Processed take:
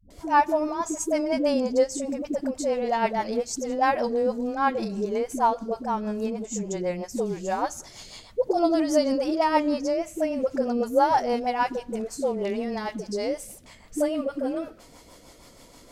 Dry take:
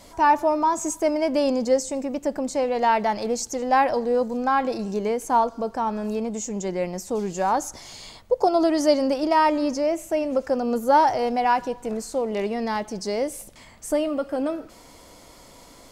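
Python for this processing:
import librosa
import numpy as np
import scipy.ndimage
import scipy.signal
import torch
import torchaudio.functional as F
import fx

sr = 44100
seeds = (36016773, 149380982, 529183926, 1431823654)

y = fx.rotary(x, sr, hz=6.3)
y = fx.dispersion(y, sr, late='highs', ms=104.0, hz=330.0)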